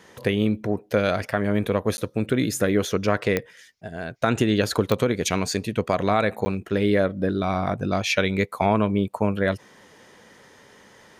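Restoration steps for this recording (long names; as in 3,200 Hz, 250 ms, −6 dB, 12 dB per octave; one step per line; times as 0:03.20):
click removal
repair the gap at 0:01.97/0:06.45, 10 ms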